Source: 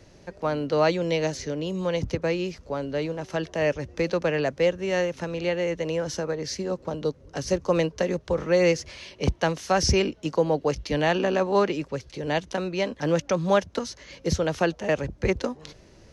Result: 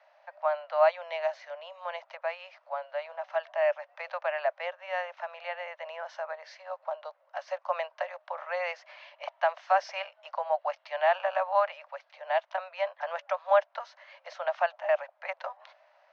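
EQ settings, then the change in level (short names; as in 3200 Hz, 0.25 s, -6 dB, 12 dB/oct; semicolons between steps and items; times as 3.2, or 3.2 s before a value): steep high-pass 600 Hz 96 dB/oct; air absorption 61 m; tape spacing loss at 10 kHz 44 dB; +5.0 dB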